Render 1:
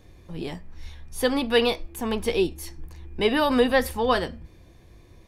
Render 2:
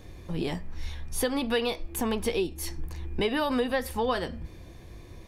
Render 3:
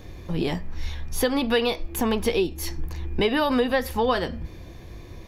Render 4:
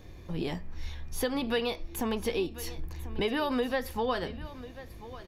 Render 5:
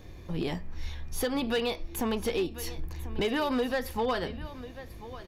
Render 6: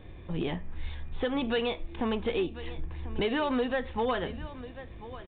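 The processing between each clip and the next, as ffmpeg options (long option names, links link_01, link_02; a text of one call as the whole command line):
ffmpeg -i in.wav -af "acompressor=threshold=-31dB:ratio=4,volume=5dB" out.wav
ffmpeg -i in.wav -af "equalizer=frequency=8900:width_type=o:width=0.24:gain=-13.5,volume=5dB" out.wav
ffmpeg -i in.wav -af "aecho=1:1:1042:0.158,volume=-7.5dB" out.wav
ffmpeg -i in.wav -af "asoftclip=type=hard:threshold=-24dB,volume=1.5dB" out.wav
ffmpeg -i in.wav -af "aresample=8000,aresample=44100" out.wav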